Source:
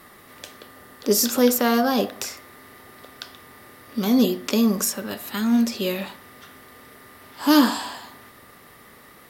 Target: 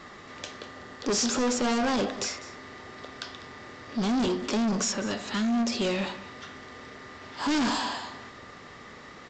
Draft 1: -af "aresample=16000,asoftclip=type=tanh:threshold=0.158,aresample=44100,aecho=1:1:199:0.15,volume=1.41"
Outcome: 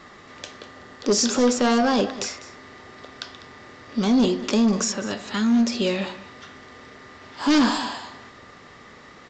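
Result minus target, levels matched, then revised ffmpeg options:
saturation: distortion -7 dB
-af "aresample=16000,asoftclip=type=tanh:threshold=0.0473,aresample=44100,aecho=1:1:199:0.15,volume=1.41"

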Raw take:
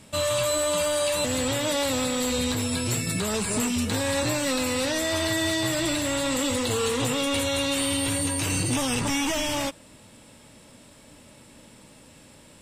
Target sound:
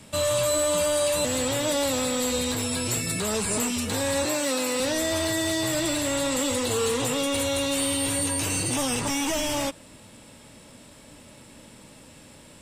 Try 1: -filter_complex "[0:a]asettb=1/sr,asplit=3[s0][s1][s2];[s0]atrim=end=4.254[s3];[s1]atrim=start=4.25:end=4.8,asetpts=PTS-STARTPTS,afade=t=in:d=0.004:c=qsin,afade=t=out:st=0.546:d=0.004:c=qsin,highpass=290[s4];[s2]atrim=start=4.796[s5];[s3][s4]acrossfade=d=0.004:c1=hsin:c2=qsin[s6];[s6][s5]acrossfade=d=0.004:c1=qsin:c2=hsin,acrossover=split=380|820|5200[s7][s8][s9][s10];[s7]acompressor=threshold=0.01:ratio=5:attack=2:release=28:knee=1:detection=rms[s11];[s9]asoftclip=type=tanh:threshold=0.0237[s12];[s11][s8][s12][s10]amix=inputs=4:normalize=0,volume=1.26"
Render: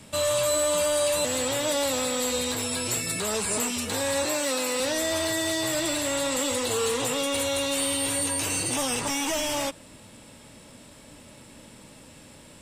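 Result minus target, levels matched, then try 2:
compression: peak gain reduction +6 dB
-filter_complex "[0:a]asettb=1/sr,asplit=3[s0][s1][s2];[s0]atrim=end=4.254[s3];[s1]atrim=start=4.25:end=4.8,asetpts=PTS-STARTPTS,afade=t=in:d=0.004:c=qsin,afade=t=out:st=0.546:d=0.004:c=qsin,highpass=290[s4];[s2]atrim=start=4.796[s5];[s3][s4]acrossfade=d=0.004:c1=hsin:c2=qsin[s6];[s6][s5]acrossfade=d=0.004:c1=qsin:c2=hsin,acrossover=split=380|820|5200[s7][s8][s9][s10];[s7]acompressor=threshold=0.0237:ratio=5:attack=2:release=28:knee=1:detection=rms[s11];[s9]asoftclip=type=tanh:threshold=0.0237[s12];[s11][s8][s12][s10]amix=inputs=4:normalize=0,volume=1.26"

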